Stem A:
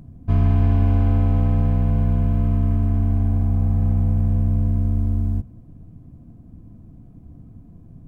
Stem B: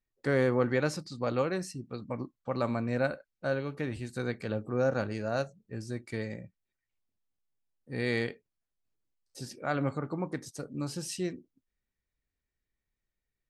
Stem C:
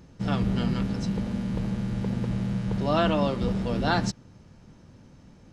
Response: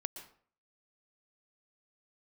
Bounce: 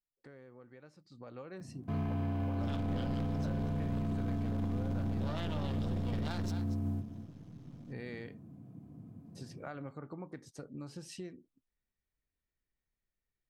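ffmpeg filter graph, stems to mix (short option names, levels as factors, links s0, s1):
-filter_complex "[0:a]highpass=f=120:w=0.5412,highpass=f=120:w=1.3066,adelay=1600,volume=0.596,asplit=2[s0][s1];[s1]volume=0.224[s2];[1:a]highshelf=f=5300:g=-11.5,acompressor=threshold=0.0112:ratio=4,volume=0.708,afade=t=in:st=1.02:d=0.7:silence=0.251189[s3];[2:a]equalizer=f=3400:t=o:w=0.3:g=6.5,aeval=exprs='max(val(0),0)':c=same,adelay=2400,volume=0.473,asplit=2[s4][s5];[s5]volume=0.178[s6];[s2][s6]amix=inputs=2:normalize=0,aecho=0:1:238:1[s7];[s0][s3][s4][s7]amix=inputs=4:normalize=0,alimiter=level_in=1.58:limit=0.0631:level=0:latency=1:release=13,volume=0.631"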